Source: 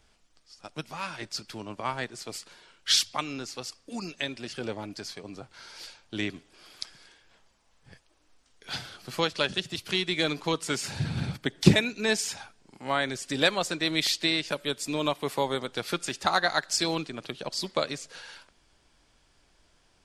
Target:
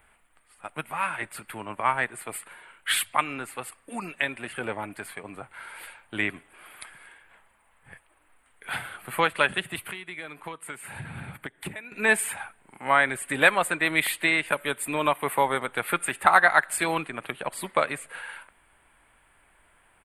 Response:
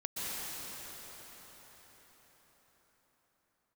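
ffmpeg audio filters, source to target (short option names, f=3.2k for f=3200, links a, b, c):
-filter_complex "[0:a]firequalizer=gain_entry='entry(330,0);entry(900,9);entry(2100,11);entry(5600,-25);entry(8700,11)':delay=0.05:min_phase=1,asettb=1/sr,asplit=3[a][b][c];[a]atrim=end=9.834[d];[b]atrim=start=9.83:end=11.92,asetpts=PTS-STARTPTS,afade=t=in:d=0.004:c=qsin,afade=t=out:st=2.086:d=0.004:c=qsin,acompressor=threshold=-34dB:ratio=8[e];[c]atrim=start=11.916[f];[d][e]acrossfade=d=0.004:c1=hsin:c2=qsin[g];[g][f]acrossfade=d=0.004:c1=qsin:c2=hsin,volume=-1dB"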